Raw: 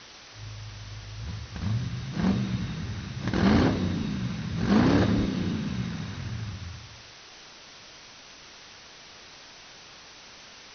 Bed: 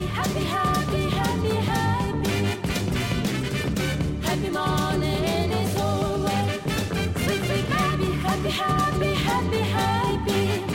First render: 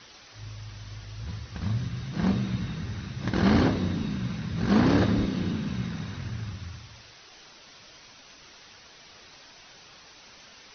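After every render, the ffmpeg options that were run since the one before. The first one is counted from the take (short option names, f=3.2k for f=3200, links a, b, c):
-af "afftdn=nr=6:nf=-49"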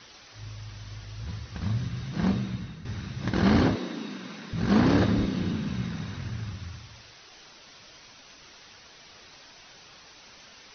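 -filter_complex "[0:a]asettb=1/sr,asplit=3[a][b][c];[a]atrim=end=3.754[d];[b]atrim=start=3.75:end=4.53,asetpts=PTS-STARTPTS,afade=t=in:d=0.004:c=qsin,afade=t=out:st=0.776:d=0.004:c=qsin,highpass=f=250:w=0.5412,highpass=f=250:w=1.3066[e];[c]atrim=start=4.526[f];[d][e]acrossfade=d=0.004:c1=hsin:c2=qsin[g];[g][f]acrossfade=d=0.004:c1=qsin:c2=hsin,asplit=2[h][i];[h]atrim=end=2.85,asetpts=PTS-STARTPTS,afade=t=out:st=2.25:d=0.6:silence=0.281838[j];[i]atrim=start=2.85,asetpts=PTS-STARTPTS,afade=t=in:d=0.004:c=hsin:silence=0.281838[k];[j][k]concat=n=2:v=0:a=1"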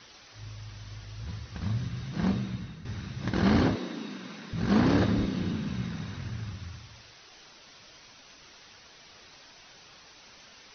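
-af "volume=-2dB"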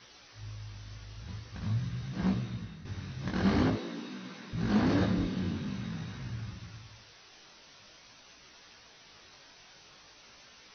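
-af "asoftclip=type=tanh:threshold=-13.5dB,flanger=delay=16:depth=6.1:speed=0.47"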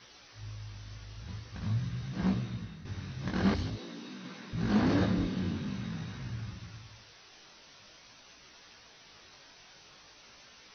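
-filter_complex "[0:a]asettb=1/sr,asplit=3[a][b][c];[a]atrim=end=3.544[d];[b]atrim=start=3.54:end=4.25,asetpts=PTS-STARTPTS,afade=t=in:d=0.004:c=qsin,afade=t=out:st=0.706:d=0.004:c=qsin,acrossover=split=120|3000[e][f][g];[f]acompressor=threshold=-42dB:ratio=4:attack=3.2:release=140:knee=2.83:detection=peak[h];[e][h][g]amix=inputs=3:normalize=0[i];[c]atrim=start=4.246[j];[d][i]acrossfade=d=0.004:c1=hsin:c2=qsin[k];[k][j]acrossfade=d=0.004:c1=qsin:c2=hsin"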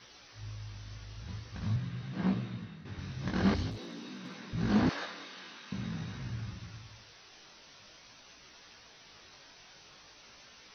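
-filter_complex "[0:a]asettb=1/sr,asplit=3[a][b][c];[a]atrim=end=1.764[d];[b]atrim=start=1.76:end=2.99,asetpts=PTS-STARTPTS,afade=t=in:d=0.004:c=qsin,afade=t=out:st=1.226:d=0.004:c=qsin,highpass=120,lowpass=4.2k[e];[c]atrim=start=2.986[f];[d][e]acrossfade=d=0.004:c1=hsin:c2=qsin[g];[g][f]acrossfade=d=0.004:c1=qsin:c2=hsin,asettb=1/sr,asplit=3[h][i][j];[h]atrim=end=3.714[k];[i]atrim=start=3.71:end=4.36,asetpts=PTS-STARTPTS,afade=t=in:d=0.004:c=qsin,afade=t=out:st=0.646:d=0.004:c=qsin,asoftclip=type=hard:threshold=-37dB[l];[j]atrim=start=4.356[m];[k][l]acrossfade=d=0.004:c1=hsin:c2=qsin[n];[n][m]acrossfade=d=0.004:c1=qsin:c2=hsin,asettb=1/sr,asplit=3[o][p][q];[o]atrim=end=4.894[r];[p]atrim=start=4.89:end=5.72,asetpts=PTS-STARTPTS,afade=t=in:d=0.004:c=qsin,afade=t=out:st=0.826:d=0.004:c=qsin,highpass=980[s];[q]atrim=start=5.716[t];[r][s]acrossfade=d=0.004:c1=hsin:c2=qsin[u];[u][t]acrossfade=d=0.004:c1=qsin:c2=hsin"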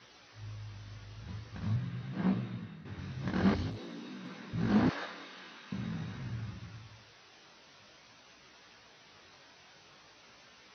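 -af "highpass=73,highshelf=f=5.1k:g=-10"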